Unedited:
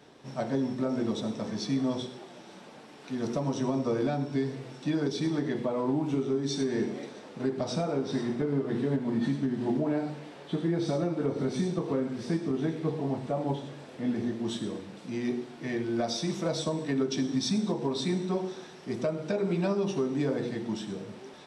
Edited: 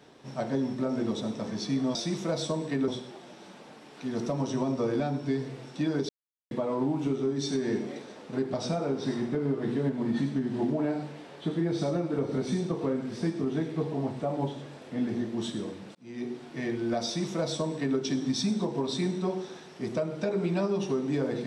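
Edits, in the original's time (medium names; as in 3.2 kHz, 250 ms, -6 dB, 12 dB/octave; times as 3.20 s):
5.16–5.58 s: mute
15.02–15.50 s: fade in
16.12–17.05 s: copy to 1.95 s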